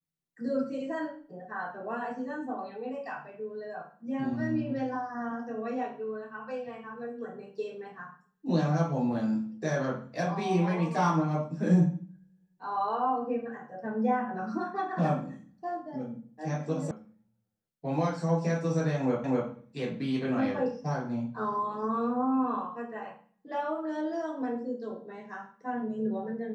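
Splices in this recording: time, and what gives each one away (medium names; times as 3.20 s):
16.91 s: sound stops dead
19.24 s: repeat of the last 0.25 s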